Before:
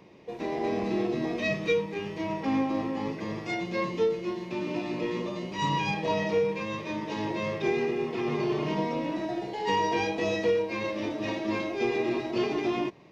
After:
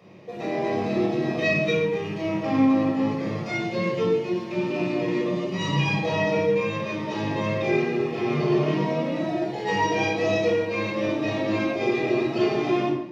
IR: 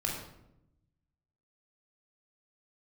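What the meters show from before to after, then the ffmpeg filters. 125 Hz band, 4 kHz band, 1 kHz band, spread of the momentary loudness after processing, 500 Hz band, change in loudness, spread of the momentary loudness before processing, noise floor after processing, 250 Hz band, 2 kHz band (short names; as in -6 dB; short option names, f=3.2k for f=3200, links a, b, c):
+8.5 dB, +3.5 dB, +2.5 dB, 6 LU, +4.5 dB, +5.0 dB, 6 LU, -32 dBFS, +6.0 dB, +5.5 dB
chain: -filter_complex "[0:a]highpass=110[a];[1:a]atrim=start_sample=2205,afade=t=out:st=0.32:d=0.01,atrim=end_sample=14553[b];[a][b]afir=irnorm=-1:irlink=0"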